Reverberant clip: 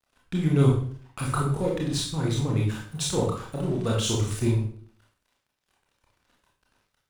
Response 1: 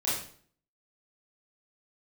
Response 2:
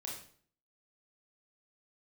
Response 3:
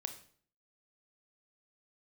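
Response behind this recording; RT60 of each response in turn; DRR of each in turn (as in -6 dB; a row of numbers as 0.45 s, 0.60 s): 2; 0.50 s, 0.50 s, 0.50 s; -9.5 dB, -3.0 dB, 7.0 dB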